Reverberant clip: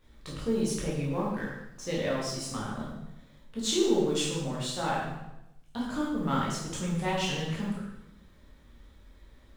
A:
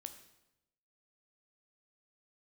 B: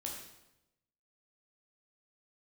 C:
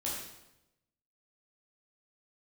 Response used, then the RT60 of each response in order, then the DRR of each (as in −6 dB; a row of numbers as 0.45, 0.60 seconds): C; 0.90, 0.90, 0.90 seconds; 8.0, −1.5, −6.0 decibels